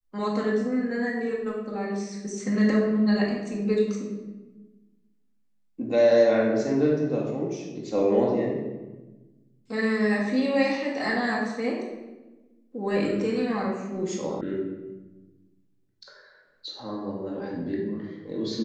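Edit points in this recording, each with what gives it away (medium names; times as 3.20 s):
14.41 s: sound stops dead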